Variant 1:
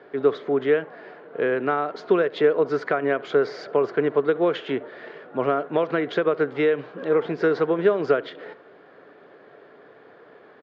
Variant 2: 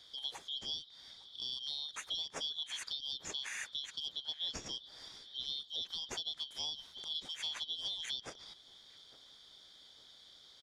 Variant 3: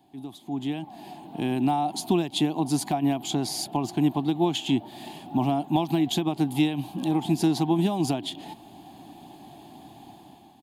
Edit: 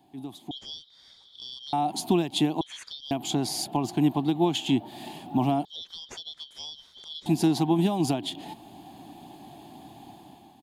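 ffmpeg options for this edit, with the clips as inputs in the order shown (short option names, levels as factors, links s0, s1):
-filter_complex "[1:a]asplit=3[s0][s1][s2];[2:a]asplit=4[s3][s4][s5][s6];[s3]atrim=end=0.512[s7];[s0]atrim=start=0.508:end=1.732[s8];[s4]atrim=start=1.728:end=2.612[s9];[s1]atrim=start=2.608:end=3.112[s10];[s5]atrim=start=3.108:end=5.652[s11];[s2]atrim=start=5.648:end=7.262[s12];[s6]atrim=start=7.258[s13];[s7][s8]acrossfade=d=0.004:c1=hsin:c2=hsin[s14];[s14][s9]acrossfade=d=0.004:c1=hsin:c2=hsin[s15];[s15][s10]acrossfade=d=0.004:c1=hsin:c2=hsin[s16];[s16][s11]acrossfade=d=0.004:c1=hsin:c2=hsin[s17];[s17][s12]acrossfade=d=0.004:c1=hsin:c2=hsin[s18];[s18][s13]acrossfade=d=0.004:c1=hsin:c2=hsin"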